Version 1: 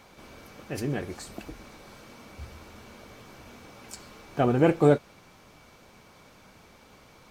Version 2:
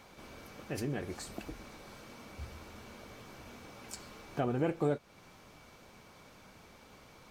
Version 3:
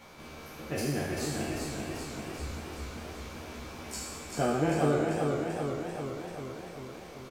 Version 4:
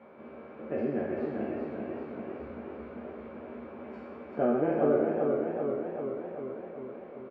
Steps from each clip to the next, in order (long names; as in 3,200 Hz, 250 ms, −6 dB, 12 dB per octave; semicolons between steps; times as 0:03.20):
downward compressor 2 to 1, threshold −32 dBFS, peak gain reduction 10 dB; level −2.5 dB
peak hold with a decay on every bin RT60 1.46 s; double-tracking delay 13 ms −3 dB; feedback echo with a swinging delay time 390 ms, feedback 66%, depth 66 cents, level −4 dB
loudspeaker in its box 130–2,100 Hz, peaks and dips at 150 Hz −5 dB, 230 Hz +9 dB, 400 Hz +8 dB, 570 Hz +9 dB, 1,900 Hz −3 dB; level −4 dB